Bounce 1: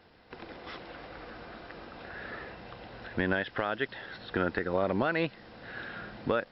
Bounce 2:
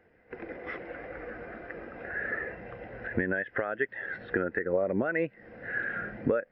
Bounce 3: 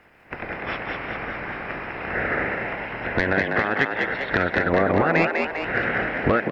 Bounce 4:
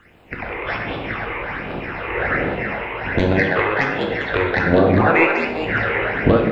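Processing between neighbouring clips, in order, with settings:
octave-band graphic EQ 500/1,000/2,000/4,000 Hz +4/−4/+9/−11 dB; downward compressor 5 to 1, threshold −33 dBFS, peak gain reduction 11.5 dB; every bin expanded away from the loudest bin 1.5 to 1; level +7 dB
ceiling on every frequency bin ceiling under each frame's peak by 19 dB; sine wavefolder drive 5 dB, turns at −10 dBFS; echo with shifted repeats 199 ms, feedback 53%, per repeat +71 Hz, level −4 dB
all-pass phaser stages 8, 1.3 Hz, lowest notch 190–1,900 Hz; convolution reverb, pre-delay 8 ms, DRR 2.5 dB; level +5.5 dB

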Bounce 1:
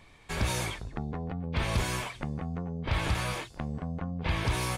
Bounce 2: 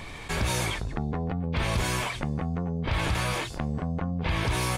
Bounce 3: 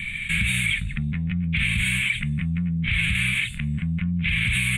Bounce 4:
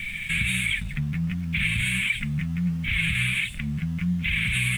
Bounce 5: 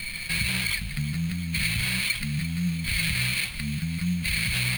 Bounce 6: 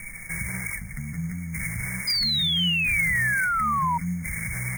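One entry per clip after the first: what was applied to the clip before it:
envelope flattener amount 50%
drawn EQ curve 100 Hz 0 dB, 200 Hz +5 dB, 340 Hz −26 dB, 490 Hz −26 dB, 850 Hz −29 dB, 2,300 Hz +14 dB, 3,700 Hz +3 dB, 5,300 Hz −29 dB, 8,300 Hz +6 dB, 13,000 Hz −3 dB; brickwall limiter −16.5 dBFS, peak gain reduction 5.5 dB; level +3 dB
in parallel at −11 dB: bit reduction 6 bits; on the sum: flanger 1.4 Hz, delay 3 ms, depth 5.1 ms, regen +45%
sample-rate reduction 6,600 Hz, jitter 0%; delay with a high-pass on its return 345 ms, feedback 79%, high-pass 1,500 Hz, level −14 dB; level −1.5 dB
linear-phase brick-wall band-stop 2,300–5,100 Hz; mains-hum notches 50/100/150/200/250 Hz; sound drawn into the spectrogram fall, 0:02.07–0:03.98, 930–5,000 Hz −22 dBFS; level −2 dB

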